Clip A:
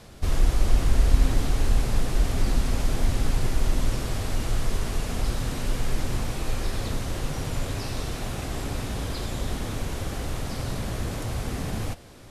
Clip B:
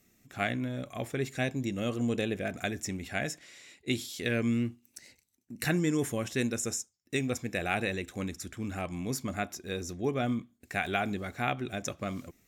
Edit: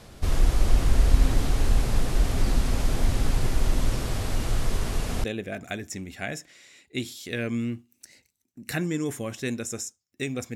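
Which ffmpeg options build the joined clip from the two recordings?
ffmpeg -i cue0.wav -i cue1.wav -filter_complex "[0:a]apad=whole_dur=10.55,atrim=end=10.55,atrim=end=5.242[link_01];[1:a]atrim=start=2.168:end=7.48[link_02];[link_01][link_02]acrossfade=duration=0.004:curve1=hsin:curve2=hsin" out.wav

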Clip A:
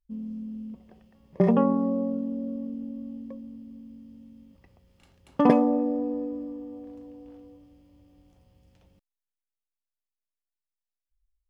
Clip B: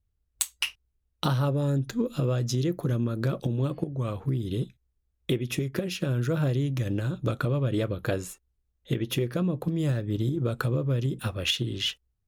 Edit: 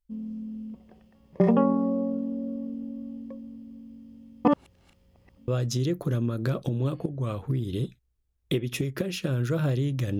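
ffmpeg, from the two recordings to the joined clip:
ffmpeg -i cue0.wav -i cue1.wav -filter_complex "[0:a]apad=whole_dur=10.19,atrim=end=10.19,asplit=2[link_01][link_02];[link_01]atrim=end=4.452[link_03];[link_02]atrim=start=4.448:end=5.482,asetpts=PTS-STARTPTS,areverse[link_04];[1:a]atrim=start=2.258:end=6.97[link_05];[link_03][link_04]acrossfade=duration=0.004:curve1=hsin:curve2=hsin[link_06];[link_06][link_05]acrossfade=duration=0.004:curve1=hsin:curve2=hsin" out.wav

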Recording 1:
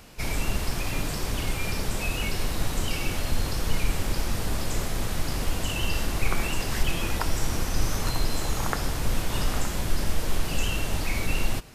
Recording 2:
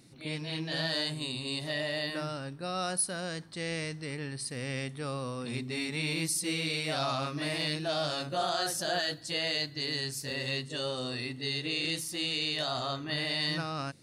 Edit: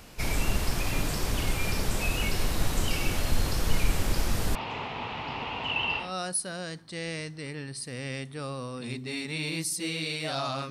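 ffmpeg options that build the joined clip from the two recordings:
ffmpeg -i cue0.wav -i cue1.wav -filter_complex "[0:a]asettb=1/sr,asplit=3[link_01][link_02][link_03];[link_01]atrim=end=4.554[link_04];[link_02]atrim=start=4.55:end=6.14,asetpts=PTS-STARTPTS,afade=type=in:duration=0.004:curve=qsin,afade=type=out:start_time=1.586:duration=0.004:curve=qsin,highpass=180,equalizer=frequency=190:width_type=q:width=4:gain=-9,equalizer=frequency=330:width_type=q:width=4:gain=-9,equalizer=frequency=570:width_type=q:width=4:gain=-6,equalizer=frequency=900:width_type=q:width=4:gain=10,equalizer=frequency=1600:width_type=q:width=4:gain=-7,equalizer=frequency=2700:width_type=q:width=4:gain=7,lowpass=frequency=3300:width=0.5412,lowpass=frequency=3300:width=1.3066[link_05];[link_03]atrim=start=6.136[link_06];[link_04][link_05]acrossfade=duration=0.004:curve1=hsin:curve2=qsin[link_07];[link_07][link_06]acrossfade=duration=0.004:curve1=qsin:curve2=hsin,apad=whole_dur=10.7,atrim=end=10.7,atrim=end=6.14,asetpts=PTS-STARTPTS[link_08];[1:a]atrim=start=2.6:end=7.34,asetpts=PTS-STARTPTS[link_09];[link_08][link_09]acrossfade=duration=0.18:curve1=tri:curve2=tri" out.wav

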